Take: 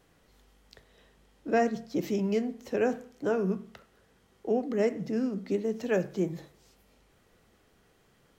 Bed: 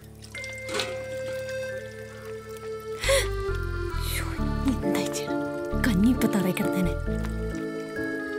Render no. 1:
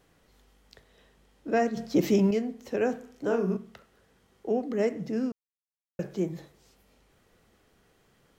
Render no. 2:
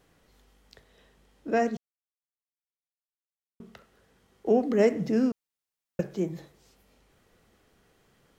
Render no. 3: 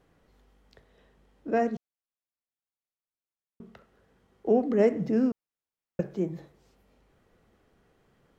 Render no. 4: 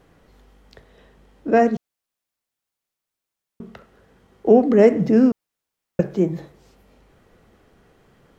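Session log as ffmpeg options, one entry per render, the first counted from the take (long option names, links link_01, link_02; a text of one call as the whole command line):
ffmpeg -i in.wav -filter_complex "[0:a]asettb=1/sr,asplit=3[link_01][link_02][link_03];[link_01]atrim=end=1.774[link_04];[link_02]atrim=start=1.77:end=2.31,asetpts=PTS-STARTPTS,afade=type=in:duration=0.004:curve=qsin,afade=type=out:start_time=0.536:duration=0.004:curve=qsin,acontrast=76[link_05];[link_03]atrim=start=2.306[link_06];[link_04][link_05]acrossfade=duration=0.004:curve1=hsin:curve2=qsin[link_07];[link_07][link_06]acrossfade=duration=0.004:curve1=qsin:curve2=hsin,asettb=1/sr,asplit=3[link_08][link_09][link_10];[link_08]atrim=end=2.994[link_11];[link_09]atrim=start=2.99:end=3.57,asetpts=PTS-STARTPTS,afade=type=in:duration=0.004:curve=qsin,afade=type=out:start_time=0.576:duration=0.004:curve=qsin,asplit=2[link_12][link_13];[link_13]adelay=39,volume=-5dB[link_14];[link_12][link_14]amix=inputs=2:normalize=0,atrim=end_sample=25578[link_15];[link_10]atrim=start=3.566[link_16];[link_11][link_15]acrossfade=duration=0.004:curve1=hsin:curve2=qsin[link_17];[link_17][link_16]acrossfade=duration=0.004:curve1=qsin:curve2=hsin,asplit=3[link_18][link_19][link_20];[link_18]atrim=end=5.32,asetpts=PTS-STARTPTS,afade=type=out:start_time=5.316:duration=0.004:curve=hsin[link_21];[link_19]atrim=start=5.32:end=5.99,asetpts=PTS-STARTPTS,volume=0[link_22];[link_20]atrim=start=5.99,asetpts=PTS-STARTPTS,afade=type=in:duration=0.004:curve=hsin[link_23];[link_21][link_22][link_23]concat=n=3:v=0:a=1" out.wav
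ffmpeg -i in.wav -filter_complex "[0:a]asettb=1/sr,asplit=3[link_01][link_02][link_03];[link_01]atrim=end=4.464[link_04];[link_02]atrim=start=4.46:end=6.01,asetpts=PTS-STARTPTS,afade=type=in:duration=0.004:curve=qsin,afade=type=out:start_time=1.546:duration=0.004:curve=qsin,acontrast=29[link_05];[link_03]atrim=start=6.006[link_06];[link_04][link_05]acrossfade=duration=0.004:curve1=hsin:curve2=qsin[link_07];[link_07][link_06]acrossfade=duration=0.004:curve1=qsin:curve2=hsin,asplit=3[link_08][link_09][link_10];[link_08]atrim=end=1.77,asetpts=PTS-STARTPTS,afade=type=out:start_time=1.766:duration=0.004:curve=hsin[link_11];[link_09]atrim=start=1.77:end=3.6,asetpts=PTS-STARTPTS,volume=0[link_12];[link_10]atrim=start=3.6,asetpts=PTS-STARTPTS,afade=type=in:duration=0.004:curve=hsin[link_13];[link_11][link_12][link_13]concat=n=3:v=0:a=1" out.wav
ffmpeg -i in.wav -af "highshelf=frequency=2600:gain=-10.5" out.wav
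ffmpeg -i in.wav -af "volume=10dB,alimiter=limit=-3dB:level=0:latency=1" out.wav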